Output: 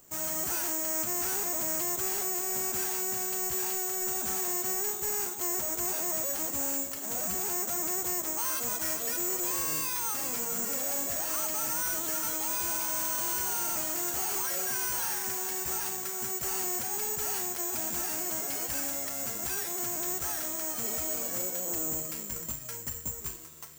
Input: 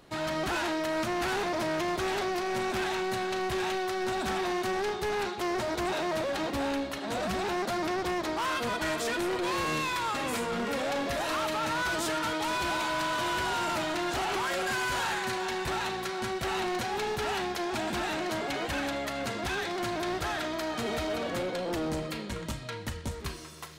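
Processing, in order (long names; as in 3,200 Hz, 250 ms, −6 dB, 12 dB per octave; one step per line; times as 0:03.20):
bad sample-rate conversion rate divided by 6×, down filtered, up zero stuff
level −8.5 dB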